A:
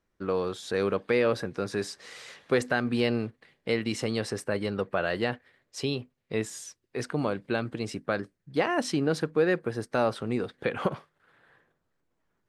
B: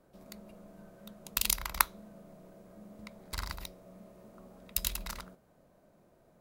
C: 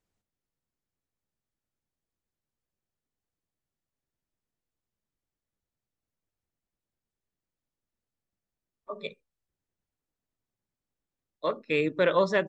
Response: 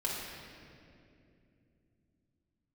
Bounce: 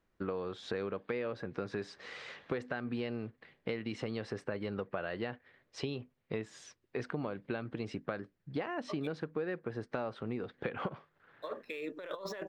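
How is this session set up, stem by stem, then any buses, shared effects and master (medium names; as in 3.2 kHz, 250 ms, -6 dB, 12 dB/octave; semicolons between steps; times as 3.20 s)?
+0.5 dB, 0.00 s, no send, low-pass 3.3 kHz 12 dB/octave
mute
-6.0 dB, 0.00 s, no send, median filter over 5 samples; high-pass 370 Hz 12 dB/octave; compressor with a negative ratio -34 dBFS, ratio -1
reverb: none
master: compression 6:1, threshold -34 dBFS, peak gain reduction 14.5 dB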